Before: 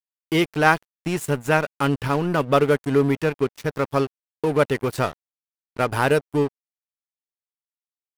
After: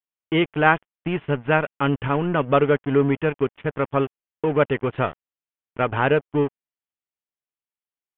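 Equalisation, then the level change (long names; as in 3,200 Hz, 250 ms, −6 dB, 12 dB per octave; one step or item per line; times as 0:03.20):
Butterworth low-pass 3,300 Hz 96 dB per octave
0.0 dB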